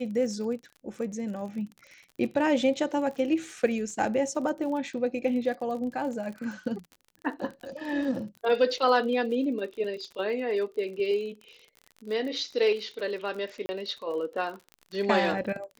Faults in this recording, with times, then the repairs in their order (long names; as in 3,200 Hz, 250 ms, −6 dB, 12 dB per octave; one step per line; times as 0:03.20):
surface crackle 42 per second −37 dBFS
0:13.66–0:13.69: drop-out 30 ms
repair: click removal
repair the gap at 0:13.66, 30 ms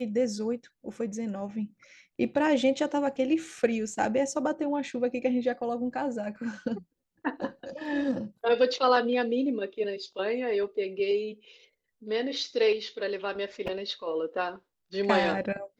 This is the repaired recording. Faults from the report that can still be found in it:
none of them is left